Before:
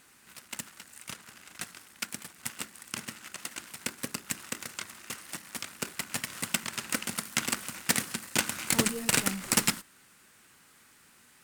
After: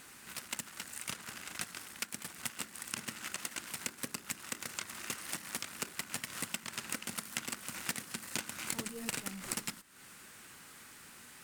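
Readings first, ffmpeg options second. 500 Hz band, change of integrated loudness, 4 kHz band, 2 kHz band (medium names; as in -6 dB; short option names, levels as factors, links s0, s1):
-9.0 dB, -8.0 dB, -7.5 dB, -7.0 dB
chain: -af "acompressor=threshold=0.00891:ratio=8,volume=1.88"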